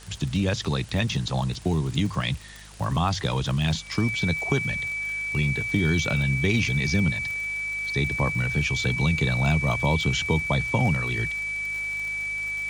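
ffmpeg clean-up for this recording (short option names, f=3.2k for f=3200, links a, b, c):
-af "adeclick=t=4,bandreject=f=51.6:t=h:w=4,bandreject=f=103.2:t=h:w=4,bandreject=f=154.8:t=h:w=4,bandreject=f=206.4:t=h:w=4,bandreject=f=2.3k:w=30,afwtdn=0.0045"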